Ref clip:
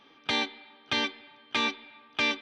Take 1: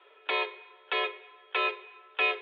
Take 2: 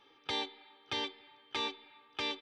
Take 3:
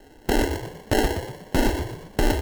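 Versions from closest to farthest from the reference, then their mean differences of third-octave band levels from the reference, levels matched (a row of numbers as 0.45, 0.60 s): 2, 1, 3; 2.5, 7.0, 12.5 dB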